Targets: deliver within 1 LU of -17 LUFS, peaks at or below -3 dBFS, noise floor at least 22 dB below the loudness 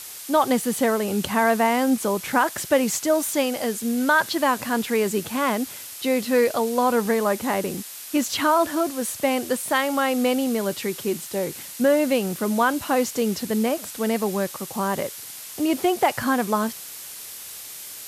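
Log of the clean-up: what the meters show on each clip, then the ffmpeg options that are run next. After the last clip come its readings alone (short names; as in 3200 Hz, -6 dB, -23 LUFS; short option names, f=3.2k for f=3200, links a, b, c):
noise floor -38 dBFS; noise floor target -45 dBFS; loudness -23.0 LUFS; peak -6.5 dBFS; loudness target -17.0 LUFS
-> -af "afftdn=nr=7:nf=-38"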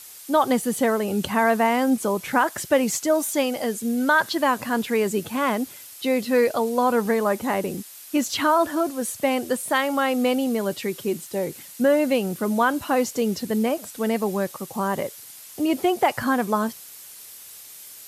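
noise floor -43 dBFS; noise floor target -45 dBFS
-> -af "afftdn=nr=6:nf=-43"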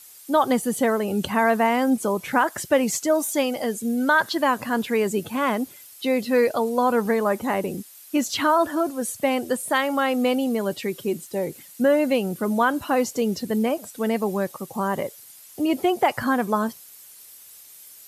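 noise floor -47 dBFS; loudness -23.0 LUFS; peak -6.5 dBFS; loudness target -17.0 LUFS
-> -af "volume=6dB,alimiter=limit=-3dB:level=0:latency=1"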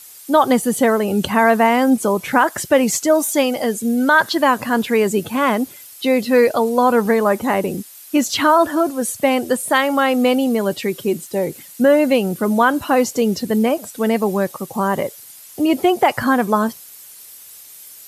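loudness -17.0 LUFS; peak -3.0 dBFS; noise floor -41 dBFS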